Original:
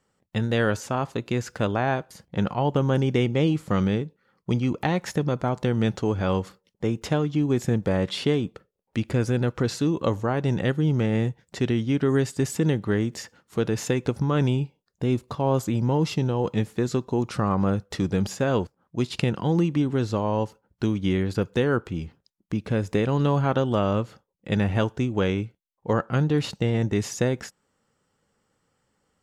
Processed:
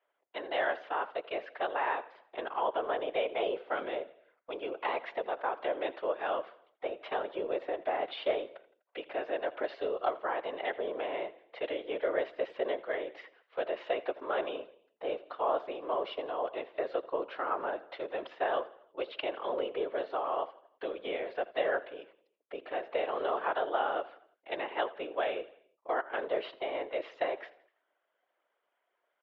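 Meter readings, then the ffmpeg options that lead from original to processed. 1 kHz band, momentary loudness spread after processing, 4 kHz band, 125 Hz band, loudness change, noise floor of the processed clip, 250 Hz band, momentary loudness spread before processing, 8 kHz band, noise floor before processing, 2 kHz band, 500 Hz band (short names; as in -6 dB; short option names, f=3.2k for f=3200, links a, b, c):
-2.5 dB, 10 LU, -8.5 dB, under -40 dB, -9.5 dB, -81 dBFS, -22.0 dB, 7 LU, under -40 dB, -75 dBFS, -5.0 dB, -6.0 dB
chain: -af "highpass=f=310:t=q:w=0.5412,highpass=f=310:t=q:w=1.307,lowpass=f=3.2k:t=q:w=0.5176,lowpass=f=3.2k:t=q:w=0.7071,lowpass=f=3.2k:t=q:w=1.932,afreqshift=150,aecho=1:1:83|166|249|332:0.119|0.0582|0.0285|0.014,afftfilt=real='hypot(re,im)*cos(2*PI*random(0))':imag='hypot(re,im)*sin(2*PI*random(1))':win_size=512:overlap=0.75"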